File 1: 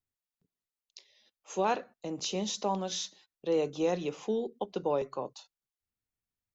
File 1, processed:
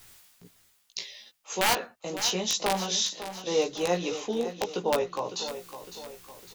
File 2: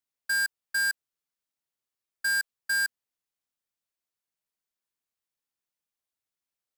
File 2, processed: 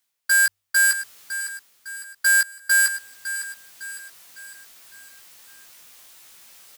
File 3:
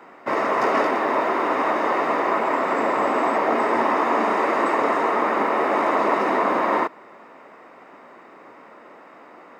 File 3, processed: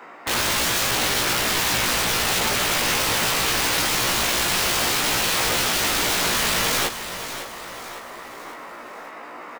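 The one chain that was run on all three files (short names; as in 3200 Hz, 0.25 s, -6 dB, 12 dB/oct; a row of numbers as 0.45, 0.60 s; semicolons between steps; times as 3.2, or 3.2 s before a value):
reverse; upward compressor, threshold -34 dBFS; reverse; tilt shelf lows -4 dB, about 740 Hz; de-hum 48.87 Hz, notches 3; wrapped overs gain 19.5 dB; doubler 17 ms -3 dB; on a send: feedback echo 0.556 s, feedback 47%, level -11.5 dB; on the sum: normalise peaks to -12 dBFS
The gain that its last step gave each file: +3.0, +4.5, +0.5 dB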